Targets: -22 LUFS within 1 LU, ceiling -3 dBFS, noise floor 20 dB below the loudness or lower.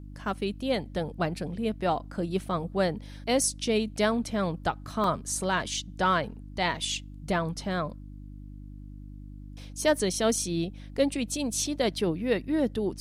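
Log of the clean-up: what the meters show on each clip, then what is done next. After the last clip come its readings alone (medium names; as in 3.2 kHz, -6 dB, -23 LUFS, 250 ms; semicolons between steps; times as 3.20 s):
dropouts 1; longest dropout 2.8 ms; hum 50 Hz; highest harmonic 300 Hz; hum level -40 dBFS; loudness -29.0 LUFS; peak level -11.0 dBFS; loudness target -22.0 LUFS
-> interpolate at 5.04 s, 2.8 ms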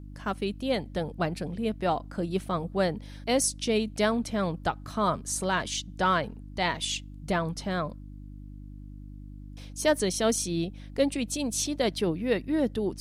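dropouts 0; hum 50 Hz; highest harmonic 300 Hz; hum level -40 dBFS
-> de-hum 50 Hz, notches 6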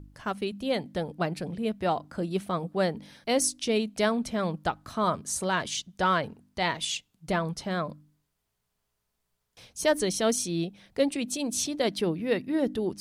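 hum not found; loudness -29.0 LUFS; peak level -11.5 dBFS; loudness target -22.0 LUFS
-> trim +7 dB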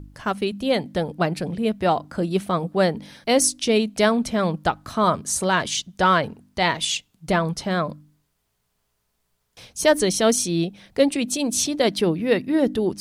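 loudness -22.0 LUFS; peak level -4.5 dBFS; noise floor -73 dBFS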